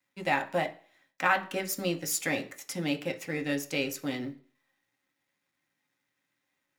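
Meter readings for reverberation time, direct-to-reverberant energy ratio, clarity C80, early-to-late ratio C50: non-exponential decay, 4.0 dB, 20.0 dB, 16.0 dB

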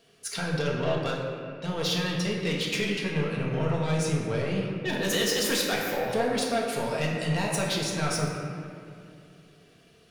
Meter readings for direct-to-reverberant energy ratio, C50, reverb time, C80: −3.0 dB, 1.0 dB, 2.5 s, 2.5 dB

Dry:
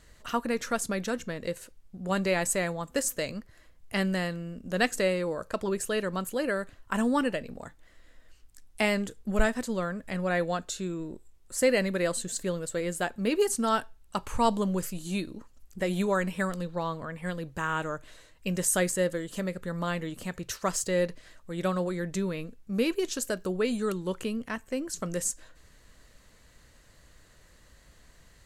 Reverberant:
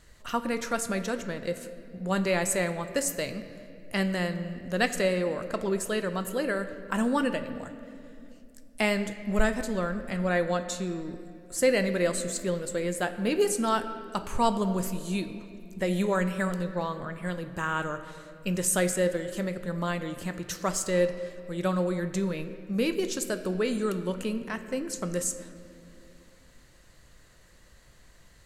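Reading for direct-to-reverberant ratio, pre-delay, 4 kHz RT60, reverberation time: 8.5 dB, 5 ms, 1.7 s, 2.5 s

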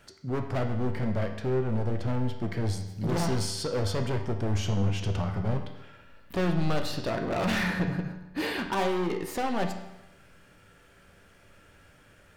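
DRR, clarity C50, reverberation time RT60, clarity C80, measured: 4.5 dB, 7.5 dB, 0.90 s, 9.5 dB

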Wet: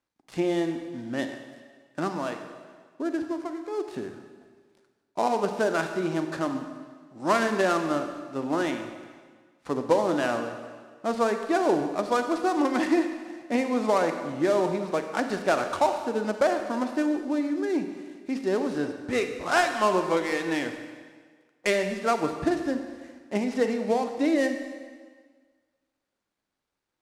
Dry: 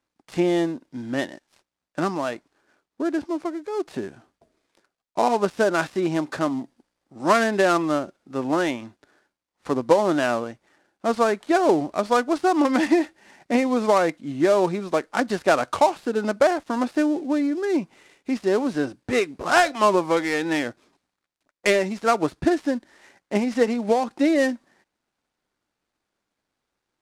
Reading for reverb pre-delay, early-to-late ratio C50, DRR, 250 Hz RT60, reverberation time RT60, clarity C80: 33 ms, 7.5 dB, 6.5 dB, 1.6 s, 1.6 s, 8.5 dB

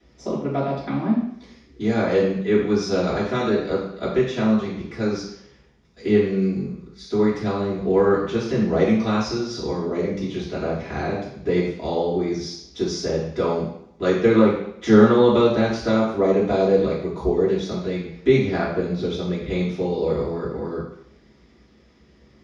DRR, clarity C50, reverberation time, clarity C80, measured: −10.0 dB, 3.0 dB, 0.70 s, 6.5 dB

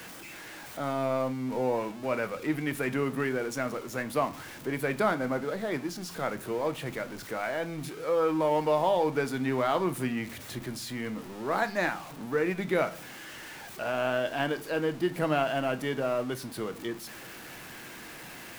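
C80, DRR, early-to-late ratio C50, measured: 23.5 dB, 9.5 dB, 19.5 dB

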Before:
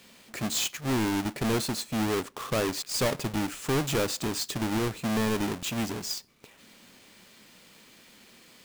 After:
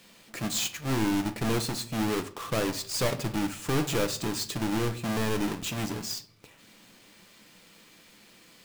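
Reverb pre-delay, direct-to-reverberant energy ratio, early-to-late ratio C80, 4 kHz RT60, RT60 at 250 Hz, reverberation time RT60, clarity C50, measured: 6 ms, 7.0 dB, 20.0 dB, 0.40 s, 0.80 s, 0.50 s, 15.5 dB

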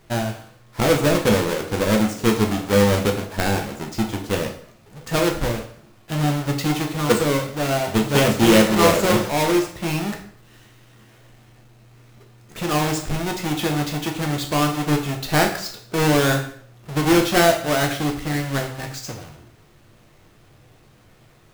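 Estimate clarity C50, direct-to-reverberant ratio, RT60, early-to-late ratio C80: 8.5 dB, 2.0 dB, 0.55 s, 12.0 dB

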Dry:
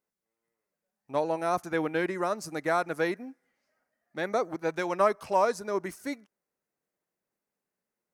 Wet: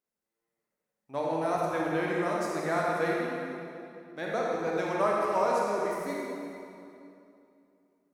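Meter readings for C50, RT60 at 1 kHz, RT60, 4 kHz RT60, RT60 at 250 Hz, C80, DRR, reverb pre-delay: −2.5 dB, 2.6 s, 2.7 s, 2.1 s, 3.1 s, −1.0 dB, −4.0 dB, 27 ms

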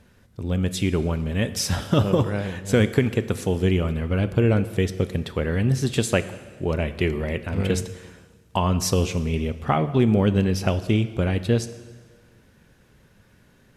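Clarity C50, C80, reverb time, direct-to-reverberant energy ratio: 14.0 dB, 15.0 dB, 1.5 s, 12.0 dB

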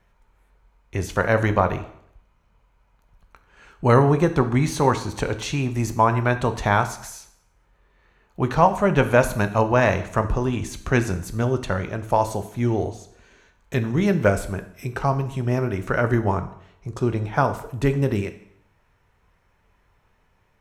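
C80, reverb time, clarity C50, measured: 16.0 dB, 0.70 s, 13.0 dB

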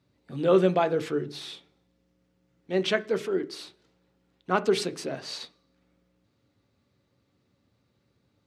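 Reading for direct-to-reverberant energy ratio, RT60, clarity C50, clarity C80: 10.0 dB, 0.40 s, 20.0 dB, 25.0 dB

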